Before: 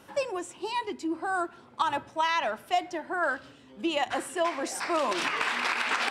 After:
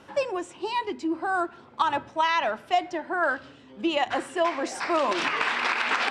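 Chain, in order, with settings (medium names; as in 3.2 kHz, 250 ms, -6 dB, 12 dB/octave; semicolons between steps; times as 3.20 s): distance through air 72 m; hum notches 60/120/180/240 Hz; trim +3.5 dB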